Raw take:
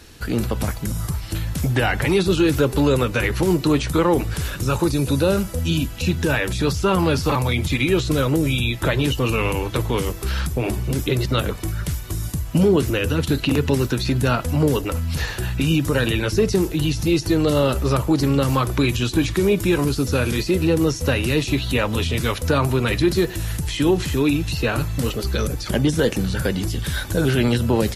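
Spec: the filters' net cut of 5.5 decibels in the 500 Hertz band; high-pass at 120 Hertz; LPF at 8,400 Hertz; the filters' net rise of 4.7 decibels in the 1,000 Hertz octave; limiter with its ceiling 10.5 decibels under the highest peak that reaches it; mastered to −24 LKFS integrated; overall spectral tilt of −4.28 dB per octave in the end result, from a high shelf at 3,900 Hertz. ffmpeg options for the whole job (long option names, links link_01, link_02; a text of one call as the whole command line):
ffmpeg -i in.wav -af "highpass=120,lowpass=8400,equalizer=frequency=500:width_type=o:gain=-9,equalizer=frequency=1000:width_type=o:gain=7.5,highshelf=frequency=3900:gain=7,volume=0.5dB,alimiter=limit=-14dB:level=0:latency=1" out.wav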